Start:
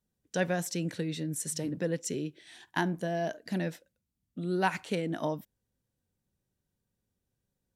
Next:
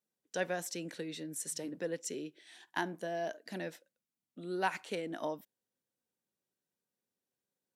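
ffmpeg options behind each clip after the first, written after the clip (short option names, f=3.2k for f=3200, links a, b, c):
-af "highpass=300,volume=-4dB"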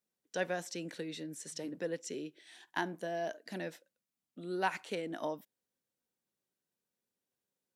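-filter_complex "[0:a]acrossover=split=6900[a][b];[b]acompressor=threshold=-55dB:ratio=4:attack=1:release=60[c];[a][c]amix=inputs=2:normalize=0"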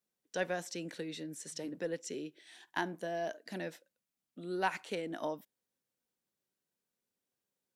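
-af "aeval=exprs='0.141*(cos(1*acos(clip(val(0)/0.141,-1,1)))-cos(1*PI/2))+0.00158*(cos(4*acos(clip(val(0)/0.141,-1,1)))-cos(4*PI/2))':c=same"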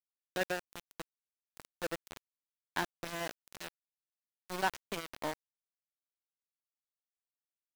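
-af "aeval=exprs='val(0)*gte(abs(val(0)),0.0237)':c=same,volume=1dB"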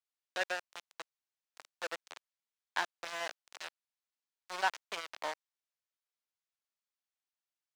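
-filter_complex "[0:a]acrossover=split=530 8000:gain=0.0794 1 0.158[a][b][c];[a][b][c]amix=inputs=3:normalize=0,volume=2dB"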